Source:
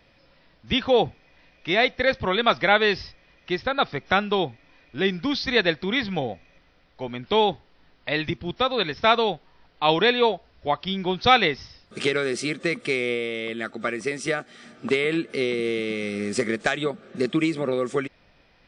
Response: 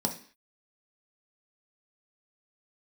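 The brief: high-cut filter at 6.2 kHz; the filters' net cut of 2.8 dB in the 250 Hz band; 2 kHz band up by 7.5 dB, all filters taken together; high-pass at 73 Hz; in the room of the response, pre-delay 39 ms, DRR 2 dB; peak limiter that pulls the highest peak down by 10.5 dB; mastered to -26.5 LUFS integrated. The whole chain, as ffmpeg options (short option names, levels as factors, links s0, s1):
-filter_complex "[0:a]highpass=73,lowpass=6200,equalizer=f=250:t=o:g=-4,equalizer=f=2000:t=o:g=9,alimiter=limit=0.355:level=0:latency=1,asplit=2[s0][s1];[1:a]atrim=start_sample=2205,adelay=39[s2];[s1][s2]afir=irnorm=-1:irlink=0,volume=0.376[s3];[s0][s3]amix=inputs=2:normalize=0,volume=0.501"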